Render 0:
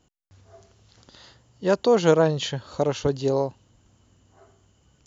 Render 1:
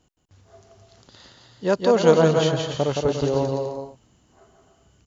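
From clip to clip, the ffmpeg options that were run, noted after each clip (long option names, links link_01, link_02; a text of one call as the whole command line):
ffmpeg -i in.wav -af "aecho=1:1:170|289|372.3|430.6|471.4:0.631|0.398|0.251|0.158|0.1" out.wav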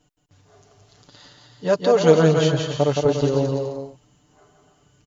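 ffmpeg -i in.wav -af "aecho=1:1:6.8:0.78,volume=-1dB" out.wav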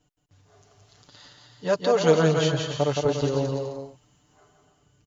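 ffmpeg -i in.wav -filter_complex "[0:a]equalizer=frequency=81:width=1.5:gain=4.5,acrossover=split=730[link_01][link_02];[link_02]dynaudnorm=framelen=100:gausssize=11:maxgain=4dB[link_03];[link_01][link_03]amix=inputs=2:normalize=0,volume=-5.5dB" out.wav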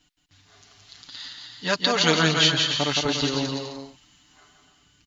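ffmpeg -i in.wav -af "equalizer=frequency=125:width_type=o:width=1:gain=-9,equalizer=frequency=250:width_type=o:width=1:gain=4,equalizer=frequency=500:width_type=o:width=1:gain=-12,equalizer=frequency=2000:width_type=o:width=1:gain=6,equalizer=frequency=4000:width_type=o:width=1:gain=10,volume=3.5dB" out.wav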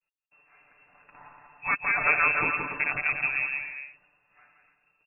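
ffmpeg -i in.wav -af "lowpass=frequency=2400:width_type=q:width=0.5098,lowpass=frequency=2400:width_type=q:width=0.6013,lowpass=frequency=2400:width_type=q:width=0.9,lowpass=frequency=2400:width_type=q:width=2.563,afreqshift=-2800,agate=range=-33dB:threshold=-58dB:ratio=3:detection=peak,volume=-2dB" out.wav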